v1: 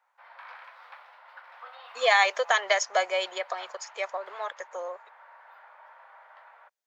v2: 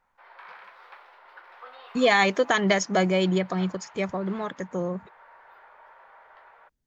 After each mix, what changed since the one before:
master: remove steep high-pass 550 Hz 36 dB/oct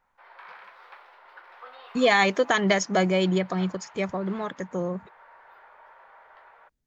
none

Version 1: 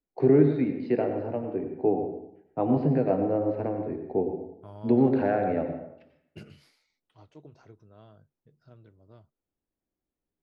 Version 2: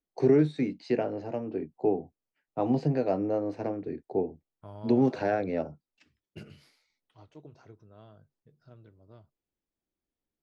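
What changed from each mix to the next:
first voice: remove air absorption 380 m; reverb: off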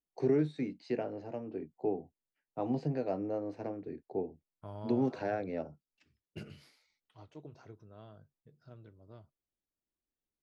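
first voice -7.0 dB

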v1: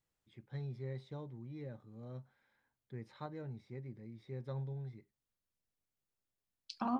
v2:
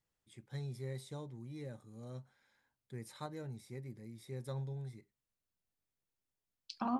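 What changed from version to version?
first voice: remove air absorption 240 m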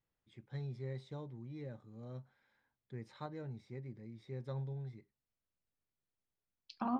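master: add air absorption 180 m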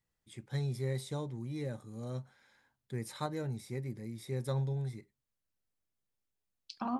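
first voice +7.5 dB; master: remove air absorption 180 m

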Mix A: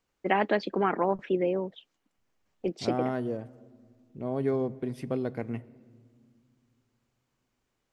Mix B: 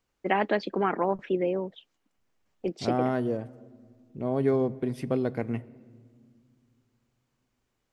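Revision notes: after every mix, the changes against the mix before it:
second voice +3.5 dB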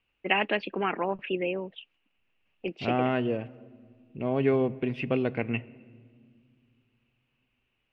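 first voice -3.5 dB; master: add synth low-pass 2700 Hz, resonance Q 9

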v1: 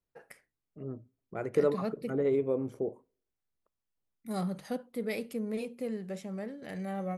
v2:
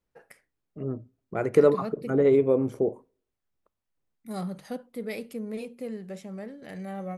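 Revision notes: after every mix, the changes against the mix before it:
second voice +8.0 dB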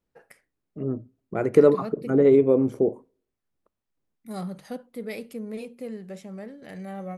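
second voice: add bell 260 Hz +5 dB 1.7 oct

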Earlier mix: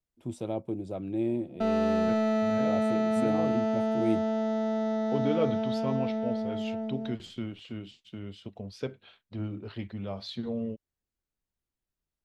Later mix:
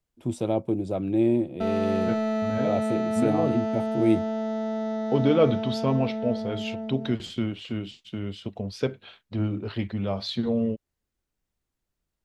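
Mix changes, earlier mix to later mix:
first voice +7.5 dB; second voice +8.0 dB

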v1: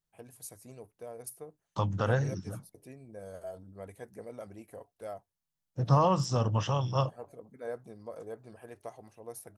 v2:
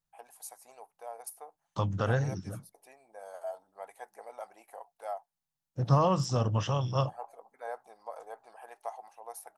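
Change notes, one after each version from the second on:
first voice: add resonant high-pass 830 Hz, resonance Q 6.4; master: add bell 900 Hz -3 dB 0.31 oct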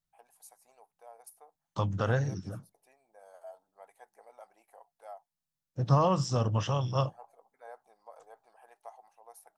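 first voice -9.0 dB

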